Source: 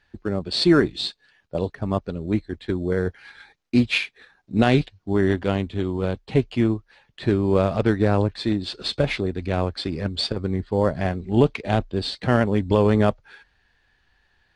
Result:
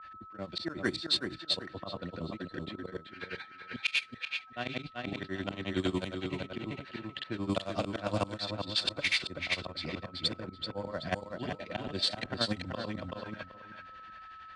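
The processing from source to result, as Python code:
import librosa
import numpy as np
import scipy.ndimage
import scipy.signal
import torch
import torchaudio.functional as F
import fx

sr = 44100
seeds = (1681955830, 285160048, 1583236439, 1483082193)

p1 = fx.granulator(x, sr, seeds[0], grain_ms=112.0, per_s=11.0, spray_ms=100.0, spread_st=0)
p2 = fx.notch_comb(p1, sr, f0_hz=420.0)
p3 = fx.auto_swell(p2, sr, attack_ms=381.0)
p4 = fx.tilt_eq(p3, sr, slope=2.5)
p5 = p4 + fx.echo_feedback(p4, sr, ms=382, feedback_pct=20, wet_db=-4.5, dry=0)
p6 = p5 + 10.0 ** (-58.0 / 20.0) * np.sin(2.0 * np.pi * 1300.0 * np.arange(len(p5)) / sr)
p7 = fx.level_steps(p6, sr, step_db=17)
p8 = p6 + (p7 * librosa.db_to_amplitude(1.5))
p9 = fx.env_lowpass(p8, sr, base_hz=2300.0, full_db=-25.0)
y = fx.band_squash(p9, sr, depth_pct=40)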